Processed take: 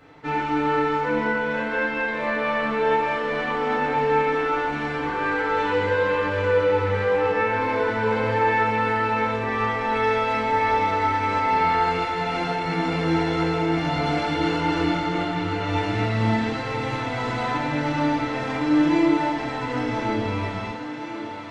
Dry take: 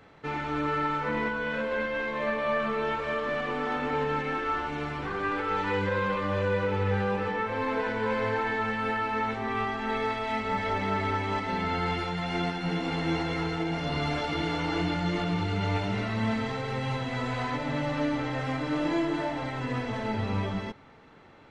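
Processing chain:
0:15.04–0:15.69: bass and treble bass −2 dB, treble −5 dB
feedback echo with a high-pass in the loop 1,054 ms, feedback 83%, high-pass 180 Hz, level −13 dB
feedback delay network reverb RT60 0.73 s, low-frequency decay 0.8×, high-frequency decay 0.9×, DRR −2.5 dB

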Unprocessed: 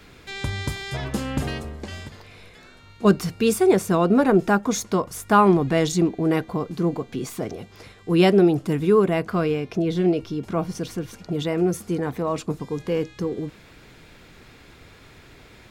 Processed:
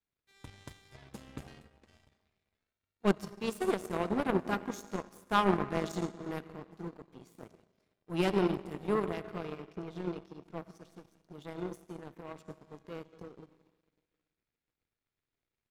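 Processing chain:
comb and all-pass reverb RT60 2.7 s, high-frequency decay 0.7×, pre-delay 30 ms, DRR 6.5 dB
power curve on the samples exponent 2
level −6.5 dB

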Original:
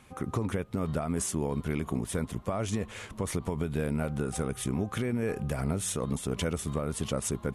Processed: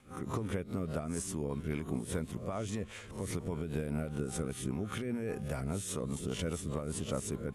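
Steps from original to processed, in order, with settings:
peak hold with a rise ahead of every peak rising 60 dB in 0.34 s
mains-hum notches 60/120 Hz
rotating-speaker cabinet horn 5 Hz
level −4.5 dB

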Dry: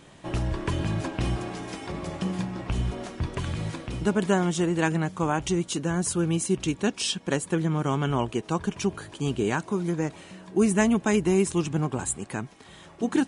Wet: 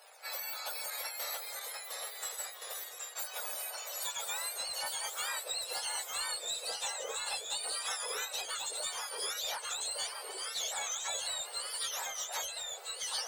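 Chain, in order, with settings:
frequency axis turned over on the octave scale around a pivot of 1,200 Hz
0:00.90–0:03.16: noise gate −33 dBFS, range −19 dB
Butterworth high-pass 560 Hz 48 dB per octave
downward compressor 6 to 1, threshold −35 dBFS, peak gain reduction 13 dB
soft clipping −30 dBFS, distortion −20 dB
delay with pitch and tempo change per echo 638 ms, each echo −1 semitone, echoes 3

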